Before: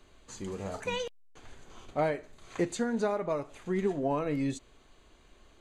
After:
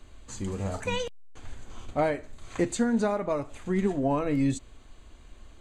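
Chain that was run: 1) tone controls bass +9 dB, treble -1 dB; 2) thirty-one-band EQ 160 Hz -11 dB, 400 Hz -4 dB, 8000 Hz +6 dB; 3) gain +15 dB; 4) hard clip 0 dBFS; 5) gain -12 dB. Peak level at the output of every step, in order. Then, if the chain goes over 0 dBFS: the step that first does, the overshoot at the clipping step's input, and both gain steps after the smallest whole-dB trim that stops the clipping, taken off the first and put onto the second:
-15.5, -17.5, -2.5, -2.5, -14.5 dBFS; no overload

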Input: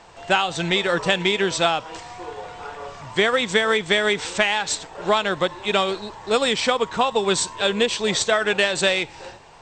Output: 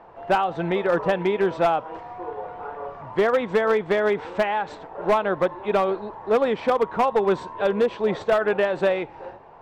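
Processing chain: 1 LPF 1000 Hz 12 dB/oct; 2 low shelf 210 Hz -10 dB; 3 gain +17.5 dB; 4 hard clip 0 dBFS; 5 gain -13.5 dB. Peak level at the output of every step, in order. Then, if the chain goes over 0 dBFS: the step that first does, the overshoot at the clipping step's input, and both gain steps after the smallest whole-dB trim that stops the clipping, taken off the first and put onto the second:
-8.5, -9.5, +8.0, 0.0, -13.5 dBFS; step 3, 8.0 dB; step 3 +9.5 dB, step 5 -5.5 dB

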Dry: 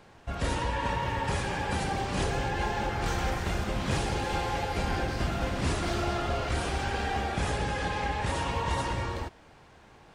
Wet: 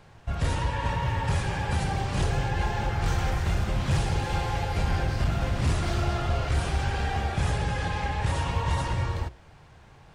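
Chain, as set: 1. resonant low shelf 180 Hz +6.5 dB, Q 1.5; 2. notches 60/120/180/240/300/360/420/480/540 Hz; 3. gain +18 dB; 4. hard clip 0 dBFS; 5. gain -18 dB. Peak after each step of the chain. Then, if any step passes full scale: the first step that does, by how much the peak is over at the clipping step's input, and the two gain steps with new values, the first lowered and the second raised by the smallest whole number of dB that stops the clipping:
-12.0, -12.5, +5.5, 0.0, -18.0 dBFS; step 3, 5.5 dB; step 3 +12 dB, step 5 -12 dB

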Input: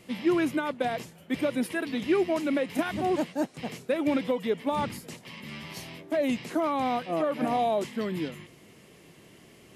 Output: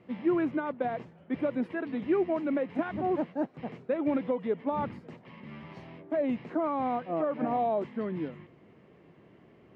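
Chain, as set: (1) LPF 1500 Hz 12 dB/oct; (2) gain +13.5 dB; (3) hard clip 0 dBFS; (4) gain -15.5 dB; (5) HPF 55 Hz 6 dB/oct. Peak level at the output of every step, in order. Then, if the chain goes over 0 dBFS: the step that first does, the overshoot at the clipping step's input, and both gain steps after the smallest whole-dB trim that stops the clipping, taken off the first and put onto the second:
-15.5, -2.0, -2.0, -17.5, -17.5 dBFS; no overload

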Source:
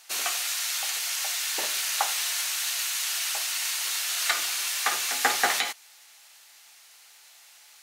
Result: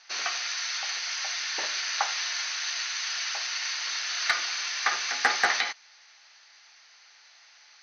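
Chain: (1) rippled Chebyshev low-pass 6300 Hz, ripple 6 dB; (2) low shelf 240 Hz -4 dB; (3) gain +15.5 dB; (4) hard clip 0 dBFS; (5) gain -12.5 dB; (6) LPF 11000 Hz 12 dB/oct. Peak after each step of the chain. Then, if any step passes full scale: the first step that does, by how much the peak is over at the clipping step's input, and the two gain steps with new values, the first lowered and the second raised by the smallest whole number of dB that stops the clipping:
-10.5, -10.5, +5.0, 0.0, -12.5, -12.0 dBFS; step 3, 5.0 dB; step 3 +10.5 dB, step 5 -7.5 dB

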